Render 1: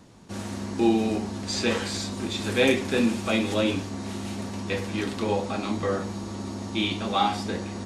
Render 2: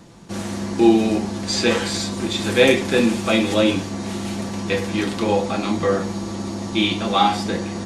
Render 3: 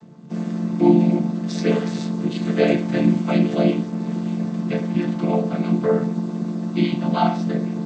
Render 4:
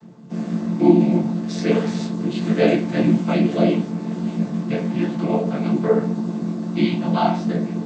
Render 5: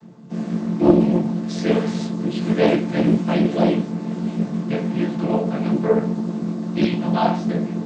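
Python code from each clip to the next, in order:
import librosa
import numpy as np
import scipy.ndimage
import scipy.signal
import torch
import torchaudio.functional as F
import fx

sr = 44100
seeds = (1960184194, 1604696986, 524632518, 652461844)

y1 = x + 0.33 * np.pad(x, (int(5.9 * sr / 1000.0), 0))[:len(x)]
y1 = y1 * 10.0 ** (6.0 / 20.0)
y2 = fx.chord_vocoder(y1, sr, chord='minor triad', root=50)
y2 = y2 * 10.0 ** (1.0 / 20.0)
y3 = fx.detune_double(y2, sr, cents=55)
y3 = y3 * 10.0 ** (4.5 / 20.0)
y4 = fx.doppler_dist(y3, sr, depth_ms=0.47)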